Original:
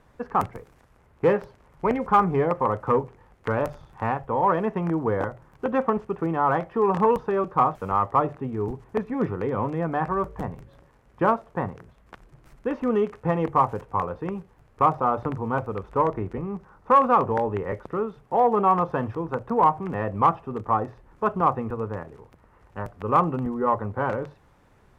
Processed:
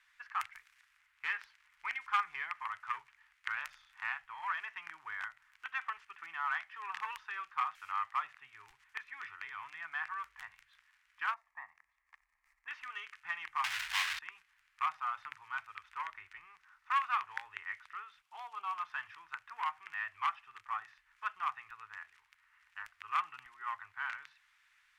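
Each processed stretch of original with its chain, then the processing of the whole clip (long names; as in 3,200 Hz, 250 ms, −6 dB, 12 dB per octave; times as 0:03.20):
0:11.34–0:12.68: high shelf with overshoot 2,300 Hz −11 dB, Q 3 + phaser with its sweep stopped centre 400 Hz, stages 6
0:13.64–0:14.19: parametric band 1,200 Hz −8.5 dB 0.44 octaves + power curve on the samples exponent 0.35
0:18.22–0:18.80: high-pass filter 110 Hz + parametric band 1,800 Hz −14.5 dB 0.68 octaves
whole clip: inverse Chebyshev high-pass filter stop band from 560 Hz, stop band 60 dB; spectral tilt −4 dB per octave; level +7.5 dB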